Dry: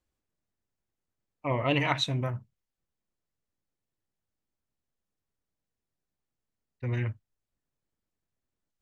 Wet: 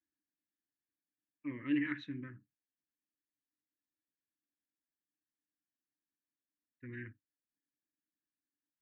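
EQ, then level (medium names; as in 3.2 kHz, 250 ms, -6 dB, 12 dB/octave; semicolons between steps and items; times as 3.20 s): two resonant band-passes 710 Hz, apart 2.5 oct; distance through air 140 m; peaking EQ 820 Hz -8.5 dB 2.4 oct; +4.0 dB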